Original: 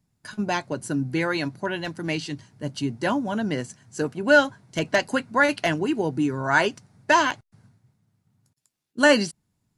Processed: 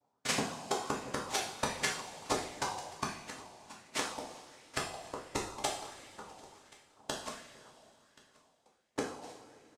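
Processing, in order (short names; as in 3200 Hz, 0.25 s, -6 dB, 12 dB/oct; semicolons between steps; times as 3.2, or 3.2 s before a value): moving spectral ripple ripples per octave 0.58, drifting -1.1 Hz, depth 10 dB; reverb removal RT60 0.74 s; compressor 5:1, threshold -34 dBFS, peak gain reduction 22.5 dB; added harmonics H 4 -10 dB, 7 -16 dB, 8 -13 dB, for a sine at -17.5 dBFS; noise vocoder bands 2; flipped gate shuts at -25 dBFS, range -41 dB; echo 1.079 s -23.5 dB; two-slope reverb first 0.54 s, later 2.9 s, from -15 dB, DRR -3.5 dB; LFO bell 1.4 Hz 700–2100 Hz +8 dB; gain +4.5 dB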